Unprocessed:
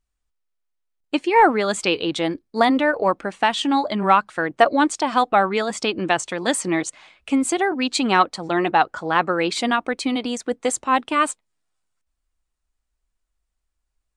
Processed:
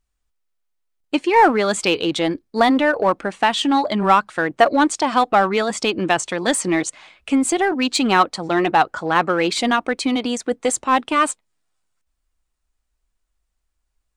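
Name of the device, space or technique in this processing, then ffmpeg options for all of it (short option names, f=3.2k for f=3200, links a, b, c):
parallel distortion: -filter_complex "[0:a]asplit=2[a][b];[b]asoftclip=type=hard:threshold=-19.5dB,volume=-7dB[c];[a][c]amix=inputs=2:normalize=0"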